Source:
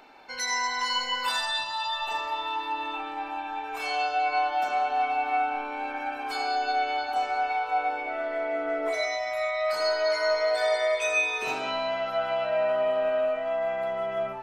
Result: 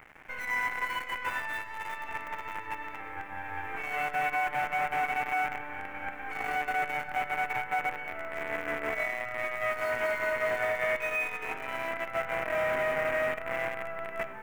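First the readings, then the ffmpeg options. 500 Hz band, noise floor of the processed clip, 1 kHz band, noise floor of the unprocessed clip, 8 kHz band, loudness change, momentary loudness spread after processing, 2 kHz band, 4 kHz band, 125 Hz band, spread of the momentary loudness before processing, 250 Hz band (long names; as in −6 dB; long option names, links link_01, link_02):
−6.5 dB, −42 dBFS, −5.5 dB, −36 dBFS, −12.5 dB, −4.5 dB, 9 LU, 0.0 dB, −14.0 dB, can't be measured, 7 LU, −4.0 dB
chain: -af "acrusher=bits=5:dc=4:mix=0:aa=0.000001,alimiter=limit=-24dB:level=0:latency=1:release=445,highshelf=frequency=3000:width_type=q:width=3:gain=-12.5"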